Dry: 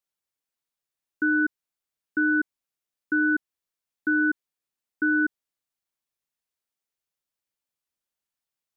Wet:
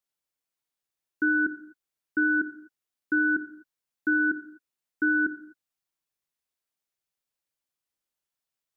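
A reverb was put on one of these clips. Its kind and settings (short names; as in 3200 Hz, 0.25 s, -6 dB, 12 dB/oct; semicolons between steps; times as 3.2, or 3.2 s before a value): non-linear reverb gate 0.28 s falling, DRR 8 dB; gain -1 dB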